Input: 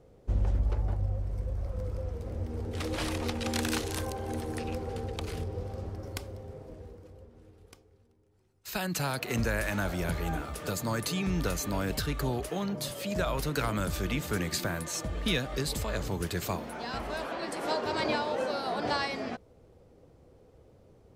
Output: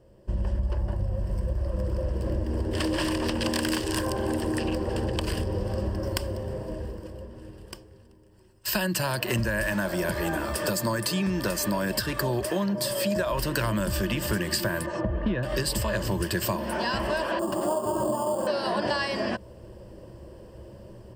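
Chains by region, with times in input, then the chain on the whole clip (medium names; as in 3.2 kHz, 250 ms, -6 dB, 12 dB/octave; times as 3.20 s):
1.49–5.19 s: peaking EQ 340 Hz +6.5 dB 0.21 oct + loudspeaker Doppler distortion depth 0.28 ms
9.72–13.32 s: high-pass 160 Hz 6 dB/octave + band-stop 2.9 kHz, Q 9.4
14.86–15.43 s: low-pass 1.3 kHz + loudspeaker Doppler distortion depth 0.11 ms
17.39–18.47 s: elliptic band-stop 1.2–8 kHz + comb of notches 490 Hz + sample-rate reducer 8 kHz
whole clip: level rider gain up to 11.5 dB; rippled EQ curve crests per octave 1.3, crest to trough 11 dB; compression, threshold -24 dBFS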